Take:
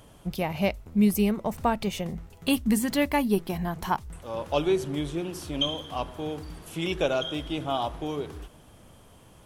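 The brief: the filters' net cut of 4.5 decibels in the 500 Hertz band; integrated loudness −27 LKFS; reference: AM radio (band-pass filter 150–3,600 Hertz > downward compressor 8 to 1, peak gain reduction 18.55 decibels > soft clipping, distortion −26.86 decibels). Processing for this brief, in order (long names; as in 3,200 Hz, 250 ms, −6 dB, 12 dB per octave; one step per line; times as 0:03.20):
band-pass filter 150–3,600 Hz
parametric band 500 Hz −6 dB
downward compressor 8 to 1, threshold −38 dBFS
soft clipping −28 dBFS
level +16 dB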